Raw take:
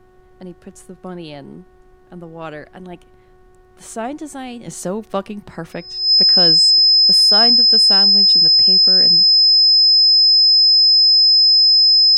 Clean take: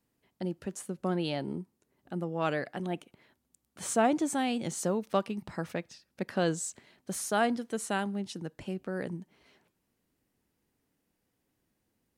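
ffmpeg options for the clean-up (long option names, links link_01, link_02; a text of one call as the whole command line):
ffmpeg -i in.wav -af "bandreject=frequency=368.7:width_type=h:width=4,bandreject=frequency=737.4:width_type=h:width=4,bandreject=frequency=1106.1:width_type=h:width=4,bandreject=frequency=1474.8:width_type=h:width=4,bandreject=frequency=1843.5:width_type=h:width=4,bandreject=frequency=5100:width=30,agate=range=-21dB:threshold=-40dB,asetnsamples=nb_out_samples=441:pad=0,asendcmd='4.68 volume volume -6.5dB',volume=0dB" out.wav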